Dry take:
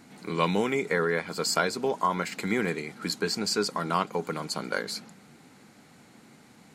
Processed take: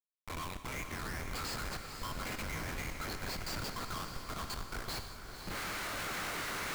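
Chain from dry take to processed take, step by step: recorder AGC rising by 32 dB/s; elliptic high-pass 1.1 kHz, stop band 50 dB; expander -34 dBFS; compression 12:1, threshold -32 dBFS, peak gain reduction 10.5 dB; chorus 0.83 Hz, delay 20 ms, depth 3.3 ms; Schmitt trigger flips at -39 dBFS; echo that smears into a reverb 509 ms, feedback 48%, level -7 dB; gated-style reverb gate 220 ms flat, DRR 9.5 dB; trim +1.5 dB

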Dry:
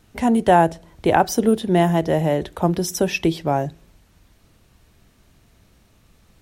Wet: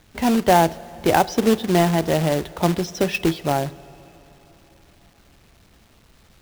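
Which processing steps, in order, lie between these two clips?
low-pass 5.2 kHz 24 dB/octave; companded quantiser 4-bit; plate-style reverb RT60 4.2 s, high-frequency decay 0.9×, DRR 19.5 dB; trim -1 dB

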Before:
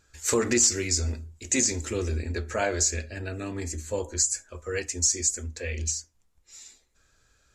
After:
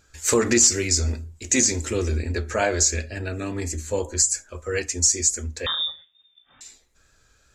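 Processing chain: 5.66–6.61 s: frequency inversion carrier 3.6 kHz; wow and flutter 28 cents; trim +4.5 dB

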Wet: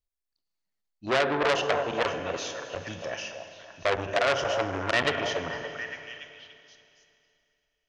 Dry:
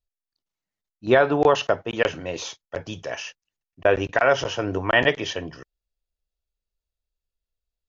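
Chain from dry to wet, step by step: repeats whose band climbs or falls 285 ms, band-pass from 710 Hz, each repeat 0.7 oct, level -6.5 dB; Schroeder reverb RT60 2.7 s, combs from 32 ms, DRR 8 dB; transformer saturation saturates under 2.9 kHz; trim -3 dB

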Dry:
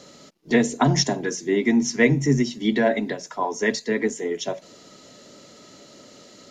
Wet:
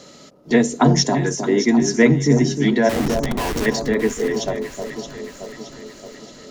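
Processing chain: dynamic bell 2.6 kHz, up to -4 dB, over -38 dBFS, Q 1.2; 2.89–3.66 s: Schmitt trigger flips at -29.5 dBFS; echo whose repeats swap between lows and highs 311 ms, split 1.1 kHz, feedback 73%, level -6.5 dB; trim +3.5 dB

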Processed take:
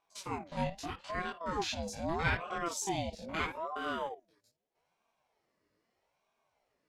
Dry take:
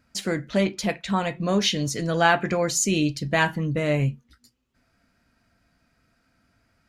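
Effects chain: spectrogram pixelated in time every 50 ms; chorus voices 2, 0.96 Hz, delay 21 ms, depth 3 ms; ring modulator with a swept carrier 630 Hz, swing 45%, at 0.79 Hz; trim -6 dB

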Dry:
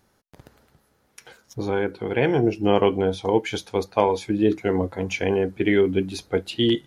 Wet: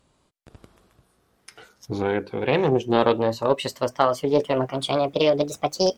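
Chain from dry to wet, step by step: gliding tape speed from 68% -> 162%; loudspeaker Doppler distortion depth 0.23 ms

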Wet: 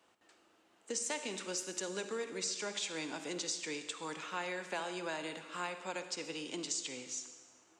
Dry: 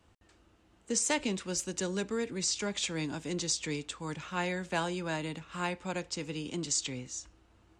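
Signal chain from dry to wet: high-pass 380 Hz 12 dB/octave; compression 4:1, threshold -36 dBFS, peak gain reduction 9 dB; reverberation RT60 1.3 s, pre-delay 43 ms, DRR 8.5 dB

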